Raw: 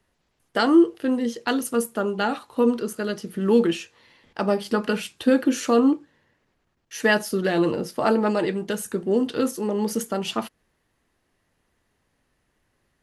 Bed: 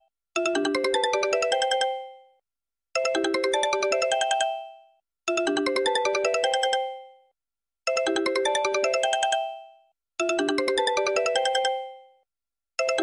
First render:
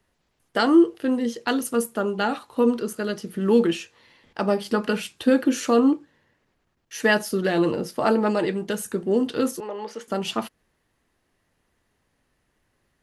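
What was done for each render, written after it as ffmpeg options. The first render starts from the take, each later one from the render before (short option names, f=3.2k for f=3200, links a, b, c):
-filter_complex "[0:a]asettb=1/sr,asplit=3[a][b][c];[a]atrim=end=9.604[d];[b]atrim=start=9.6:end=10.08,asetpts=PTS-STARTPTS,afade=t=in:d=0.004:c=qsin,afade=t=out:st=0.476:d=0.004:c=qsin,highpass=600,lowpass=3.3k[e];[c]atrim=start=10.076[f];[d][e]acrossfade=d=0.004:c1=hsin:c2=qsin[g];[g][f]acrossfade=d=0.004:c1=qsin:c2=hsin"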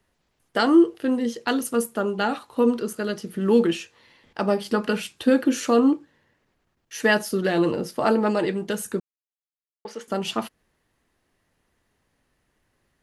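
-filter_complex "[0:a]asplit=3[a][b][c];[a]atrim=end=9,asetpts=PTS-STARTPTS,afade=t=out:st=8.996:d=0.004:c=hsin[d];[b]atrim=start=9:end=9.85,asetpts=PTS-STARTPTS,volume=0[e];[c]atrim=start=9.85,asetpts=PTS-STARTPTS,afade=t=in:d=0.004:c=hsin[f];[d][e][f]concat=n=3:v=0:a=1"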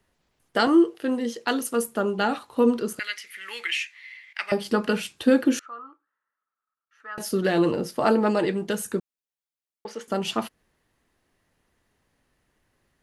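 -filter_complex "[0:a]asettb=1/sr,asplit=3[a][b][c];[a]atrim=end=0.674[d];[b]atrim=start=0.67:end=1.88,asetpts=PTS-STARTPTS,afade=t=in:d=0.004:c=qsin,afade=t=out:st=1.206:d=0.004:c=qsin,highpass=f=260:p=1[e];[c]atrim=start=1.876[f];[d][e]acrossfade=d=0.004:c1=hsin:c2=qsin[g];[g][f]acrossfade=d=0.004:c1=qsin:c2=hsin,asettb=1/sr,asplit=3[h][i][j];[h]atrim=end=2.994[k];[i]atrim=start=2.99:end=4.52,asetpts=PTS-STARTPTS,afade=t=in:d=0.004:c=qsin,afade=t=out:st=1.526:d=0.004:c=qsin,highpass=f=2.1k:t=q:w=9.2[l];[j]atrim=start=4.516[m];[k][l]acrossfade=d=0.004:c1=hsin:c2=qsin[n];[n][m]acrossfade=d=0.004:c1=qsin:c2=hsin,asettb=1/sr,asplit=3[o][p][q];[o]atrim=end=5.594[r];[p]atrim=start=5.59:end=7.18,asetpts=PTS-STARTPTS,afade=t=in:d=0.004:c=qsin,afade=t=out:st=1.586:d=0.004:c=qsin,bandpass=f=1.3k:t=q:w=14[s];[q]atrim=start=7.176[t];[r][s]acrossfade=d=0.004:c1=hsin:c2=qsin[u];[u][t]acrossfade=d=0.004:c1=qsin:c2=hsin"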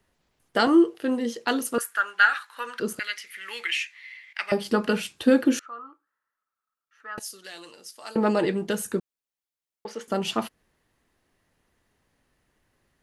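-filter_complex "[0:a]asettb=1/sr,asplit=3[a][b][c];[a]atrim=end=1.784[d];[b]atrim=start=1.78:end=2.8,asetpts=PTS-STARTPTS,afade=t=in:d=0.004:c=qsin,afade=t=out:st=1.016:d=0.004:c=qsin,highpass=f=1.6k:t=q:w=6.3[e];[c]atrim=start=2.796[f];[d][e]acrossfade=d=0.004:c1=hsin:c2=qsin[g];[g][f]acrossfade=d=0.004:c1=qsin:c2=hsin,asettb=1/sr,asplit=3[h][i][j];[h]atrim=end=7.194[k];[i]atrim=start=7.19:end=8.16,asetpts=PTS-STARTPTS,afade=t=in:d=0.004:c=qsin,afade=t=out:st=0.966:d=0.004:c=qsin,bandpass=f=7.5k:t=q:w=1[l];[j]atrim=start=8.156[m];[k][l]acrossfade=d=0.004:c1=hsin:c2=qsin[n];[n][m]acrossfade=d=0.004:c1=qsin:c2=hsin"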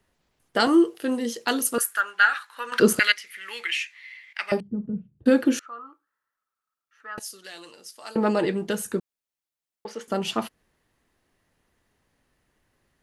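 -filter_complex "[0:a]asettb=1/sr,asplit=3[a][b][c];[a]atrim=end=0.604[d];[b]atrim=start=0.6:end=2.01,asetpts=PTS-STARTPTS,afade=t=in:d=0.004:c=qsin,afade=t=out:st=1.406:d=0.004:c=qsin,aemphasis=mode=production:type=cd[e];[c]atrim=start=2.006[f];[d][e]acrossfade=d=0.004:c1=hsin:c2=qsin[g];[g][f]acrossfade=d=0.004:c1=qsin:c2=hsin,asettb=1/sr,asplit=3[h][i][j];[h]atrim=end=4.604[k];[i]atrim=start=4.6:end=5.26,asetpts=PTS-STARTPTS,afade=t=in:d=0.004:c=qsin,afade=t=out:st=0.656:d=0.004:c=qsin,lowpass=f=150:t=q:w=1.8[l];[j]atrim=start=5.256[m];[k][l]acrossfade=d=0.004:c1=hsin:c2=qsin[n];[n][m]acrossfade=d=0.004:c1=qsin:c2=hsin,asplit=3[o][p][q];[o]atrim=end=2.722[r];[p]atrim=start=2.718:end=3.122,asetpts=PTS-STARTPTS,volume=11.5dB[s];[q]atrim=start=3.118[t];[r][s]acrossfade=d=0.004:c1=hsin:c2=hsin[u];[u][t]acrossfade=d=0.004:c1=hsin:c2=hsin"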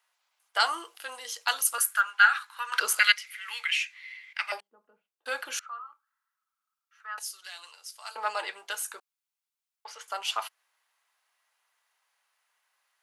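-af "highpass=f=840:w=0.5412,highpass=f=840:w=1.3066,bandreject=f=1.8k:w=12"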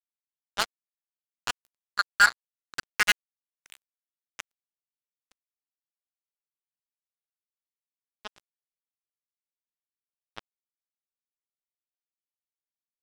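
-filter_complex "[0:a]acrossover=split=2600[a][b];[b]adynamicsmooth=sensitivity=1:basefreq=3.5k[c];[a][c]amix=inputs=2:normalize=0,acrusher=bits=2:mix=0:aa=0.5"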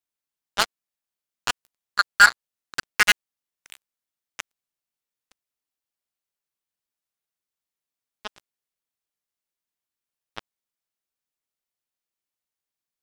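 -af "volume=5.5dB,alimiter=limit=-3dB:level=0:latency=1"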